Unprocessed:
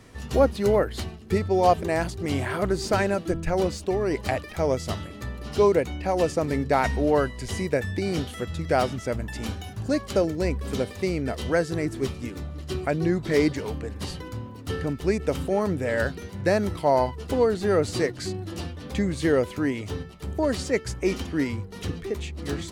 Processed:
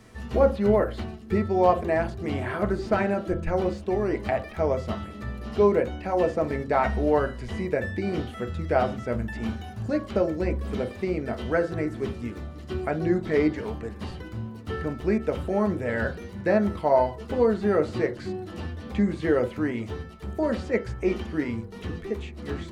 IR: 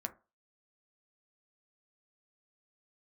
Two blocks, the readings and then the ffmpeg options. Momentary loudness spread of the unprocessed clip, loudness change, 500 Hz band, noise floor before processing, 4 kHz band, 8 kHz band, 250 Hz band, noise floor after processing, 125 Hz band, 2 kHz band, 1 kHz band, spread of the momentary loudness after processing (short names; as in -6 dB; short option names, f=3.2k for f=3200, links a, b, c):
11 LU, -0.5 dB, -0.5 dB, -40 dBFS, -8.0 dB, under -10 dB, 0.0 dB, -41 dBFS, -2.0 dB, -1.5 dB, -1.0 dB, 12 LU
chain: -filter_complex "[0:a]acrossover=split=3300[a][b];[b]acompressor=threshold=-55dB:ratio=4:attack=1:release=60[c];[a][c]amix=inputs=2:normalize=0[d];[1:a]atrim=start_sample=2205[e];[d][e]afir=irnorm=-1:irlink=0"